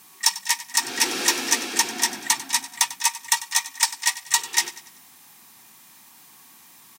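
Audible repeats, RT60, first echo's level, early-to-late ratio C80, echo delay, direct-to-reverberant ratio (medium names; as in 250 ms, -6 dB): 3, no reverb, -16.0 dB, no reverb, 96 ms, no reverb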